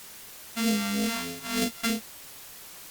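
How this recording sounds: a buzz of ramps at a fixed pitch in blocks of 64 samples; phasing stages 2, 3.2 Hz, lowest notch 430–1000 Hz; a quantiser's noise floor 8-bit, dither triangular; Opus

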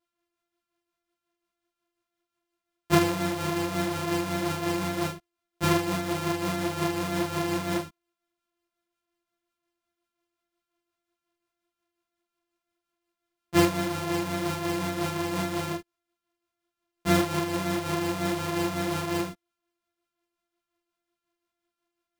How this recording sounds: a buzz of ramps at a fixed pitch in blocks of 128 samples; tremolo triangle 5.6 Hz, depth 45%; a shimmering, thickened sound

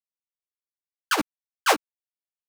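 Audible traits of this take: a quantiser's noise floor 6-bit, dither none; tremolo triangle 8.4 Hz, depth 90%; a shimmering, thickened sound

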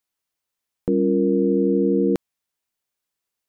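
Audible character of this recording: noise floor -84 dBFS; spectral tilt +2.0 dB/oct

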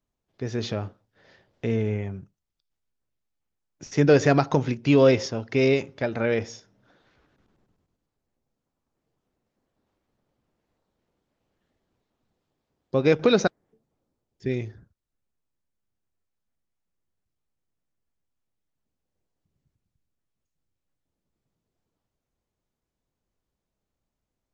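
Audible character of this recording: noise floor -84 dBFS; spectral tilt -6.0 dB/oct

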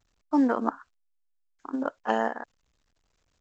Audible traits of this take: random-step tremolo 3.5 Hz; A-law

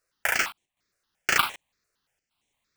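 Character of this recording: aliases and images of a low sample rate 14000 Hz, jitter 20%; chopped level 1.3 Hz, depth 60%, duty 85%; notches that jump at a steady rate 8.7 Hz 880–4800 Hz

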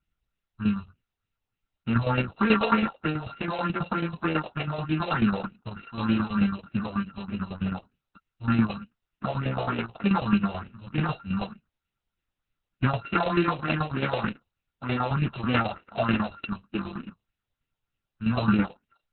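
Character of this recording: a buzz of ramps at a fixed pitch in blocks of 32 samples; tremolo saw down 9.2 Hz, depth 65%; phasing stages 4, 3.3 Hz, lowest notch 250–1100 Hz; Opus

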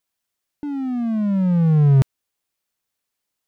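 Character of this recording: noise floor -81 dBFS; spectral tilt -11.5 dB/oct

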